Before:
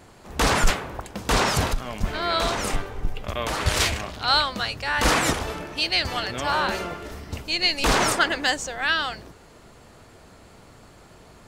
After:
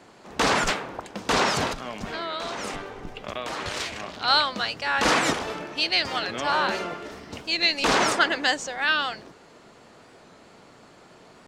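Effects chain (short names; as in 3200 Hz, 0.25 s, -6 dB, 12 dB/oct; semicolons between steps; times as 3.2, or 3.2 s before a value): three-band isolator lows -17 dB, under 150 Hz, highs -13 dB, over 7700 Hz; 1.84–4.11 compressor 6:1, threshold -28 dBFS, peak gain reduction 9.5 dB; record warp 45 rpm, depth 100 cents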